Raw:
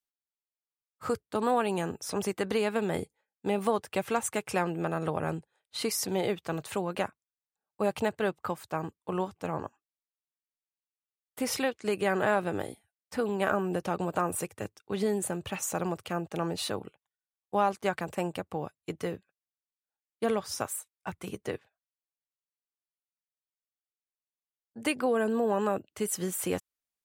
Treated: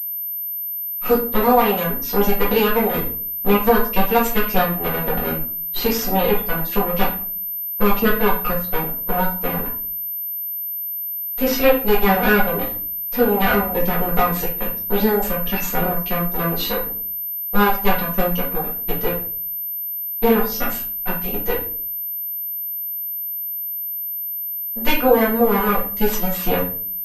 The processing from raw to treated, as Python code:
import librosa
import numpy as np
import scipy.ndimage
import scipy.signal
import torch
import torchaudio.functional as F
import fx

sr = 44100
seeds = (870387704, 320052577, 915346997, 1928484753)

y = fx.lower_of_two(x, sr, delay_ms=4.1)
y = fx.dereverb_blind(y, sr, rt60_s=0.98)
y = fx.room_shoebox(y, sr, seeds[0], volume_m3=37.0, walls='mixed', distance_m=1.0)
y = fx.pwm(y, sr, carrier_hz=13000.0)
y = F.gain(torch.from_numpy(y), 7.0).numpy()